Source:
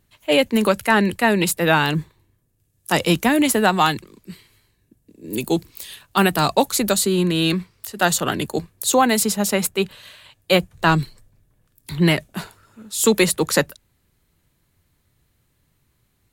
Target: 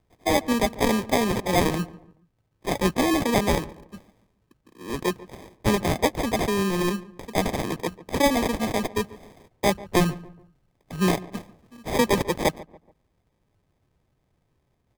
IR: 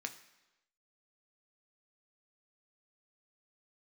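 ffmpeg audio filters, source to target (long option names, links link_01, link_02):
-filter_complex "[0:a]acrusher=samples=34:mix=1:aa=0.000001,asplit=2[link_01][link_02];[link_02]adelay=155,lowpass=frequency=1400:poles=1,volume=-18dB,asplit=2[link_03][link_04];[link_04]adelay=155,lowpass=frequency=1400:poles=1,volume=0.39,asplit=2[link_05][link_06];[link_06]adelay=155,lowpass=frequency=1400:poles=1,volume=0.39[link_07];[link_01][link_03][link_05][link_07]amix=inputs=4:normalize=0,asetrate=48069,aresample=44100,volume=-5dB"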